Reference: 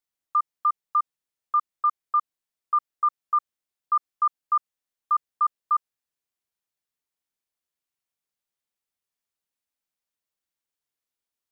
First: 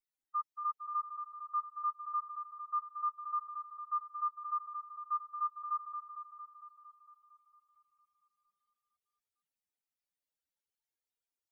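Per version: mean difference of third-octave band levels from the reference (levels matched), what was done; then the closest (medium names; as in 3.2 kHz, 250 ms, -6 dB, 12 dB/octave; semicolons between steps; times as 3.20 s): 2.0 dB: spectral contrast enhancement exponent 3.5; Butterworth band-stop 1.1 kHz, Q 4.8; echo whose repeats swap between lows and highs 228 ms, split 1.2 kHz, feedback 67%, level -4.5 dB; trim -7 dB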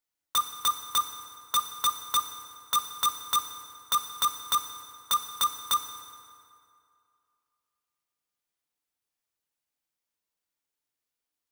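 18.0 dB: compression 6:1, threshold -22 dBFS, peak gain reduction 4.5 dB; integer overflow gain 20 dB; FDN reverb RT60 2.5 s, low-frequency decay 0.9×, high-frequency decay 0.65×, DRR 5.5 dB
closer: first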